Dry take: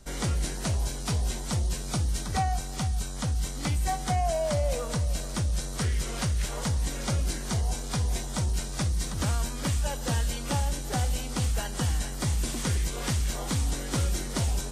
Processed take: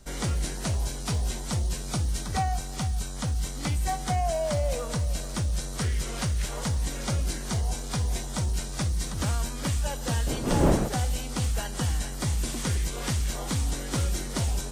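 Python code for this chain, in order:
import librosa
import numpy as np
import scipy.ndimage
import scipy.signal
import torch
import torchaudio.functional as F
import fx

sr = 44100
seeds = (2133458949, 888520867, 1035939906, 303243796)

y = fx.dmg_wind(x, sr, seeds[0], corner_hz=410.0, level_db=-23.0, at=(10.26, 10.87), fade=0.02)
y = fx.quant_companded(y, sr, bits=8)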